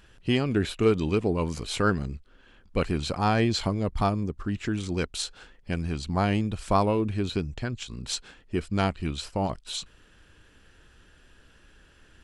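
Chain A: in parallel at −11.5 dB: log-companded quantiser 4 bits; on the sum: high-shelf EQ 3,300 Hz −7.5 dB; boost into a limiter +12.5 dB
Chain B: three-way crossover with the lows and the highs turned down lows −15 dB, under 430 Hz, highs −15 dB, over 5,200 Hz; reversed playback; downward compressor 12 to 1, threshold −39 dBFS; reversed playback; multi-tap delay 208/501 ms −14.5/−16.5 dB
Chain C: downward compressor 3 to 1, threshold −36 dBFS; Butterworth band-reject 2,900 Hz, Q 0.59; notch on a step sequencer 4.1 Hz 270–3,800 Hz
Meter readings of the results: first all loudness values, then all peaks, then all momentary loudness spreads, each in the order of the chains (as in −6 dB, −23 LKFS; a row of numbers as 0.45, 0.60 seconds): −15.0, −44.5, −40.0 LKFS; −1.0, −27.0, −22.5 dBFS; 11, 17, 8 LU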